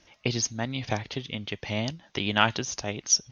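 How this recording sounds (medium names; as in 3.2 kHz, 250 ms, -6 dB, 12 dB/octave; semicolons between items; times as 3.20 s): noise floor -63 dBFS; spectral tilt -2.5 dB/octave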